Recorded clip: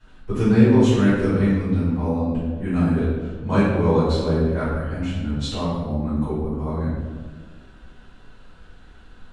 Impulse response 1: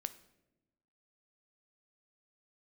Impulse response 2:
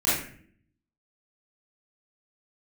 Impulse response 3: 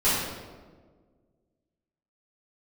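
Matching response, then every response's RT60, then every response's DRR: 3; 0.95 s, non-exponential decay, 1.5 s; 11.5, −12.0, −13.0 decibels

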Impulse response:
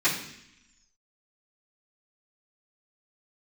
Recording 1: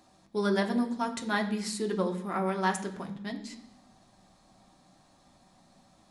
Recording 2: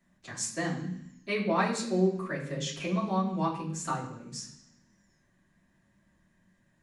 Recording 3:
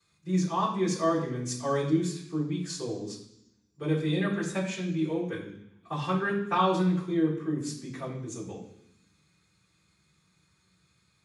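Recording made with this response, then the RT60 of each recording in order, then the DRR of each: 3; 0.75, 0.75, 0.75 seconds; 2.5, −7.5, −16.5 decibels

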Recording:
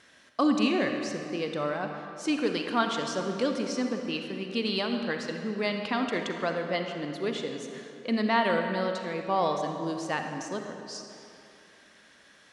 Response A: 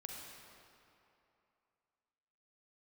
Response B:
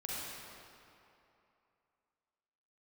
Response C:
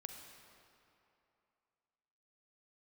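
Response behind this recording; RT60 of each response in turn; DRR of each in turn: C; 2.8, 2.8, 2.8 seconds; −0.5, −6.5, 4.0 decibels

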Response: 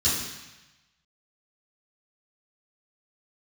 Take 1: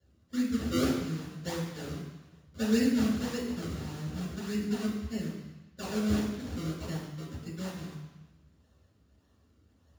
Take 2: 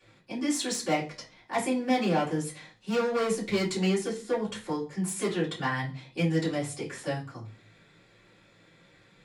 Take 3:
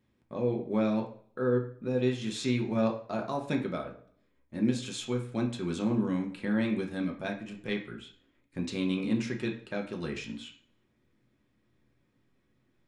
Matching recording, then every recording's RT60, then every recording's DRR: 1; 1.0, 0.40, 0.55 seconds; −13.5, −11.5, 1.0 decibels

